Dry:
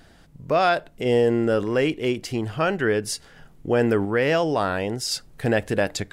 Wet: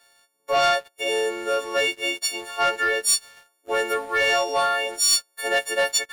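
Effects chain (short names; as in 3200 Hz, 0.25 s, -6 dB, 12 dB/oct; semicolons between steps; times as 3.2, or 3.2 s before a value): frequency quantiser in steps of 4 st; HPF 480 Hz 24 dB/oct; sample leveller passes 2; gain -7 dB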